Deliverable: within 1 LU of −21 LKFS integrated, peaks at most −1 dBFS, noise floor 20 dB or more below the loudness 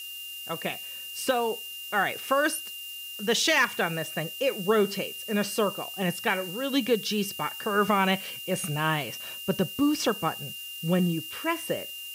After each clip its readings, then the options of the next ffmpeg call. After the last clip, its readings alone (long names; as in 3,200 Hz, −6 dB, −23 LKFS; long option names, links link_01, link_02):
interfering tone 2,800 Hz; level of the tone −38 dBFS; background noise floor −40 dBFS; target noise floor −48 dBFS; integrated loudness −27.5 LKFS; sample peak −12.0 dBFS; target loudness −21.0 LKFS
→ -af "bandreject=frequency=2800:width=30"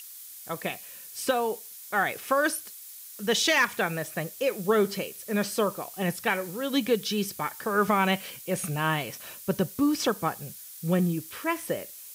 interfering tone none found; background noise floor −45 dBFS; target noise floor −48 dBFS
→ -af "afftdn=noise_reduction=6:noise_floor=-45"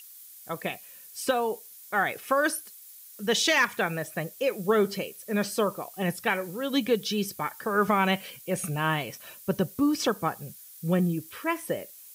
background noise floor −49 dBFS; integrated loudness −28.0 LKFS; sample peak −12.5 dBFS; target loudness −21.0 LKFS
→ -af "volume=7dB"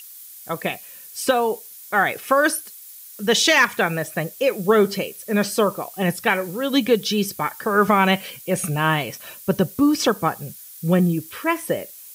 integrated loudness −21.0 LKFS; sample peak −5.5 dBFS; background noise floor −42 dBFS